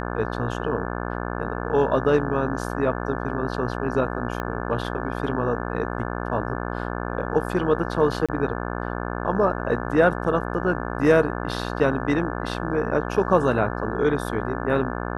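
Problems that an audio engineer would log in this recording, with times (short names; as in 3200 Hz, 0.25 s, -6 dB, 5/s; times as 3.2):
buzz 60 Hz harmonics 29 -29 dBFS
4.4 pop -16 dBFS
8.26–8.29 gap 26 ms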